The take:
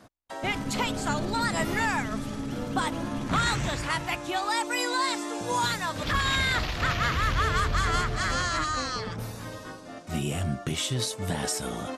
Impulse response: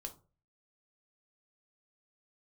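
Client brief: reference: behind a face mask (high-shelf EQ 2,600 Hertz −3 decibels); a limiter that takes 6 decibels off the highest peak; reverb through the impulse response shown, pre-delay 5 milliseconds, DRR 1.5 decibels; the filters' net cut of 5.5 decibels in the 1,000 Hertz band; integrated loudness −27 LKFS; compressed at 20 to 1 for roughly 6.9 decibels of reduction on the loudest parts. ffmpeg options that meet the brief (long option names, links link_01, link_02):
-filter_complex "[0:a]equalizer=frequency=1000:width_type=o:gain=-6.5,acompressor=threshold=-29dB:ratio=20,alimiter=level_in=2dB:limit=-24dB:level=0:latency=1,volume=-2dB,asplit=2[link_01][link_02];[1:a]atrim=start_sample=2205,adelay=5[link_03];[link_02][link_03]afir=irnorm=-1:irlink=0,volume=2dB[link_04];[link_01][link_04]amix=inputs=2:normalize=0,highshelf=frequency=2600:gain=-3,volume=7.5dB"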